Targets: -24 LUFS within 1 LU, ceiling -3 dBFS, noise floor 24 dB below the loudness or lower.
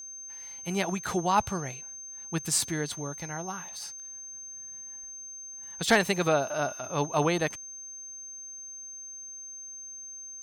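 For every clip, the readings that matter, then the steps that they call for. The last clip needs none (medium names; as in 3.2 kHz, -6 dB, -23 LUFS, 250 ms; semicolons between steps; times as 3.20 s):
steady tone 6.3 kHz; tone level -40 dBFS; loudness -31.5 LUFS; peak level -11.0 dBFS; loudness target -24.0 LUFS
-> band-stop 6.3 kHz, Q 30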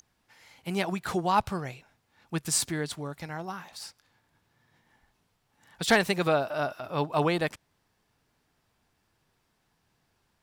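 steady tone not found; loudness -29.0 LUFS; peak level -11.5 dBFS; loudness target -24.0 LUFS
-> trim +5 dB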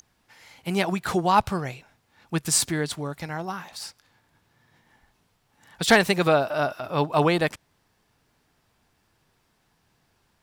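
loudness -24.0 LUFS; peak level -6.5 dBFS; noise floor -69 dBFS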